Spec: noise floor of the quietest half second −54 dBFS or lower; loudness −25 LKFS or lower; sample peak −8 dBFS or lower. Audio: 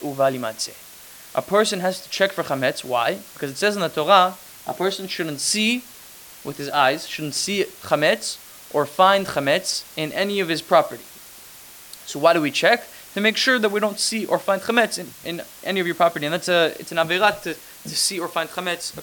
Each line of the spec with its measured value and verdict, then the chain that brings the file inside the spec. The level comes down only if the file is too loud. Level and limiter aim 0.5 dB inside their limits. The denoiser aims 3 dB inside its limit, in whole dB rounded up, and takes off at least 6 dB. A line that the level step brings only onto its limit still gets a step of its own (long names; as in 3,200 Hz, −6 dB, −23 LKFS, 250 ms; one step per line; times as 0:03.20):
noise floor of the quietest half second −43 dBFS: out of spec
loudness −21.0 LKFS: out of spec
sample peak −2.5 dBFS: out of spec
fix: broadband denoise 10 dB, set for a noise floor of −43 dBFS
level −4.5 dB
brickwall limiter −8.5 dBFS